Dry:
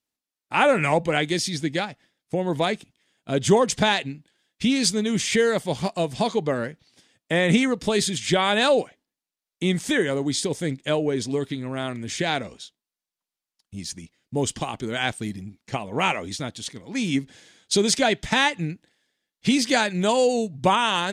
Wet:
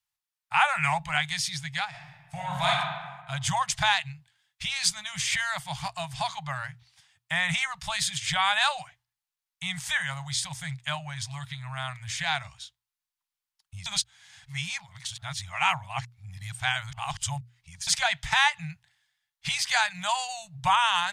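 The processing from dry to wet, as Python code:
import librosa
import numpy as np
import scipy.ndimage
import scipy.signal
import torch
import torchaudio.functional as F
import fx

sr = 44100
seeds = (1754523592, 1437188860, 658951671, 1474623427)

y = fx.reverb_throw(x, sr, start_s=1.88, length_s=0.81, rt60_s=1.4, drr_db=-4.5)
y = fx.edit(y, sr, fx.reverse_span(start_s=13.86, length_s=4.01), tone=tone)
y = scipy.signal.sosfilt(scipy.signal.cheby2(4, 50, [230.0, 480.0], 'bandstop', fs=sr, output='sos'), y)
y = fx.peak_eq(y, sr, hz=6200.0, db=-2.5, octaves=2.0)
y = fx.hum_notches(y, sr, base_hz=60, count=2)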